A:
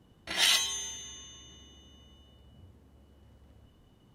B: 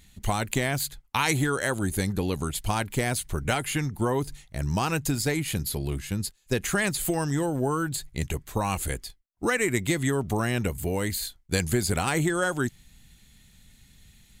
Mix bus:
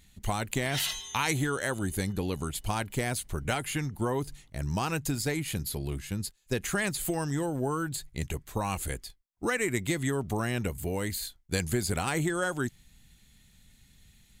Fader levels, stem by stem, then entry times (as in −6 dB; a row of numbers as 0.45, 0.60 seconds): −8.0, −4.0 decibels; 0.35, 0.00 seconds